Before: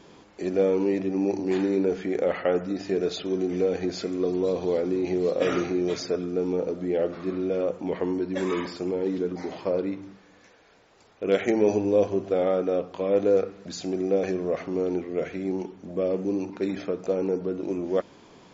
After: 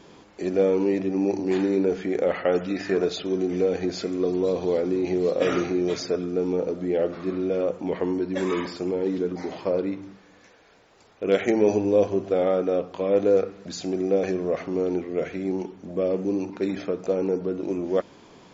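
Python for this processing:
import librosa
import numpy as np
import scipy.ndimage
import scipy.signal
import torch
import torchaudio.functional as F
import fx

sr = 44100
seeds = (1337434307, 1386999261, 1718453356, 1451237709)

y = fx.peak_eq(x, sr, hz=fx.line((2.52, 4900.0), (3.04, 930.0)), db=13.0, octaves=0.91, at=(2.52, 3.04), fade=0.02)
y = y * librosa.db_to_amplitude(1.5)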